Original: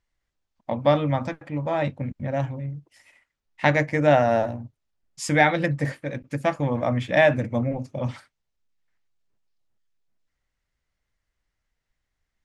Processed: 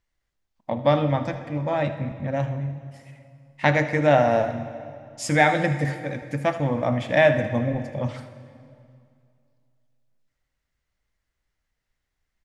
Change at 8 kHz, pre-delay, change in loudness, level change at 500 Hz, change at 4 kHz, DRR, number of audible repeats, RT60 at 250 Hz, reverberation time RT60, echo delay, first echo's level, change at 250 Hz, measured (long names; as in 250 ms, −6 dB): +0.5 dB, 8 ms, +0.5 dB, +0.5 dB, +0.5 dB, 8.5 dB, 1, 2.5 s, 2.4 s, 78 ms, −15.5 dB, +0.5 dB